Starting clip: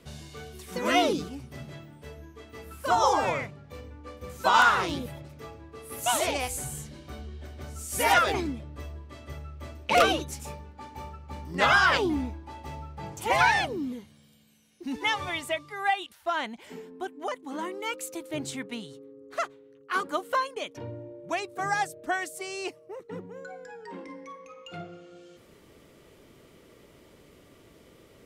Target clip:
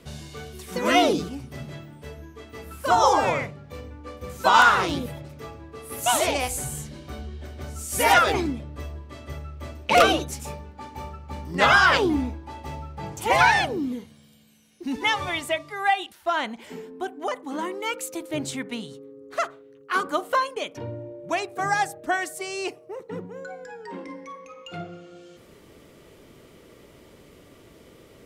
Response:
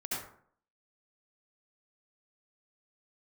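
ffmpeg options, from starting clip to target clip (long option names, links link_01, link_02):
-filter_complex "[0:a]asplit=2[link_01][link_02];[1:a]atrim=start_sample=2205,asetrate=83790,aresample=44100,lowpass=1200[link_03];[link_02][link_03]afir=irnorm=-1:irlink=0,volume=-13dB[link_04];[link_01][link_04]amix=inputs=2:normalize=0,volume=4dB"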